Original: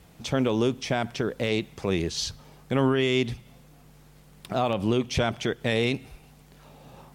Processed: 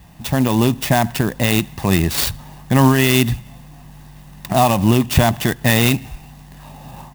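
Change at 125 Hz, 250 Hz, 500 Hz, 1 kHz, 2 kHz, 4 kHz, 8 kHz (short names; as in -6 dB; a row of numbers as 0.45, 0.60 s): +13.5, +10.5, +5.0, +12.5, +10.0, +9.0, +14.0 dB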